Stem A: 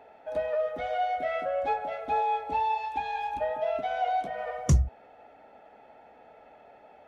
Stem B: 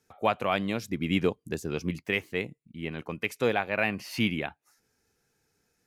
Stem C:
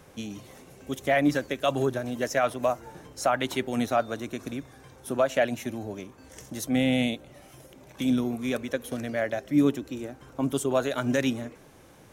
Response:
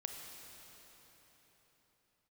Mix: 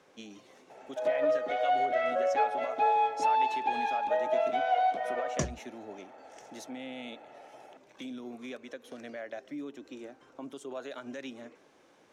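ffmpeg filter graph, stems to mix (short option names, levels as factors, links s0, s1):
-filter_complex "[0:a]adelay=700,volume=1.19[s0];[2:a]alimiter=limit=0.0708:level=0:latency=1:release=169,volume=0.473[s1];[s0][s1]amix=inputs=2:normalize=0,acrossover=split=230 7200:gain=0.0891 1 0.126[s2][s3][s4];[s2][s3][s4]amix=inputs=3:normalize=0"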